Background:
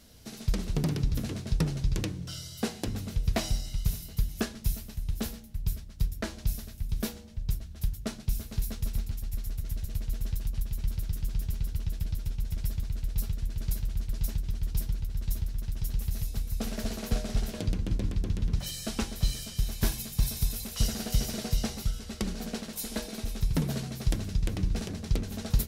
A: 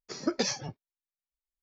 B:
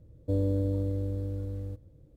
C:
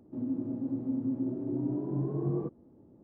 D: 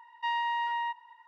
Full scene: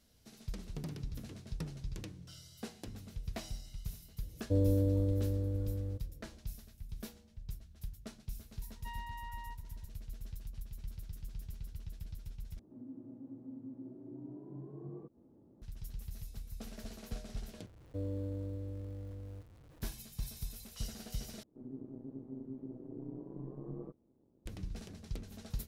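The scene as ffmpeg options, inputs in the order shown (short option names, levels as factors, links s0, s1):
-filter_complex "[2:a]asplit=2[s0][s1];[3:a]asplit=2[s2][s3];[0:a]volume=0.211[s4];[s2]acompressor=mode=upward:threshold=0.0178:ratio=2.5:attack=3.2:release=140:knee=2.83:detection=peak[s5];[s1]aeval=exprs='val(0)+0.5*0.00631*sgn(val(0))':c=same[s6];[s3]tremolo=f=130:d=0.788[s7];[s4]asplit=4[s8][s9][s10][s11];[s8]atrim=end=12.594[s12];[s5]atrim=end=3.03,asetpts=PTS-STARTPTS,volume=0.168[s13];[s9]atrim=start=15.616:end=17.664[s14];[s6]atrim=end=2.16,asetpts=PTS-STARTPTS,volume=0.266[s15];[s10]atrim=start=19.816:end=21.434[s16];[s7]atrim=end=3.03,asetpts=PTS-STARTPTS,volume=0.316[s17];[s11]atrim=start=24.456[s18];[s0]atrim=end=2.16,asetpts=PTS-STARTPTS,volume=0.841,afade=t=in:d=0.004:c=hsin,afade=t=out:st=2.156:d=0.004:c=hsin,adelay=4220[s19];[4:a]atrim=end=1.27,asetpts=PTS-STARTPTS,volume=0.15,afade=t=in:d=0.004:c=hsin,afade=t=out:st=1.266:d=0.004:c=hsin,adelay=8620[s20];[s12][s13]acrossfade=d=0.004:c1=hsin:c2=hsin[s21];[s21][s14]acrossfade=d=0.004:c1=hsin:c2=hsin[s22];[s22][s15]acrossfade=d=0.004:c1=hsin:c2=hsin[s23];[s23][s16]acrossfade=d=0.004:c1=hsin:c2=hsin[s24];[s24][s17]acrossfade=d=0.004:c1=hsin:c2=hsin[s25];[s25][s18]acrossfade=d=0.004:c1=hsin:c2=hsin[s26];[s26][s19][s20]amix=inputs=3:normalize=0"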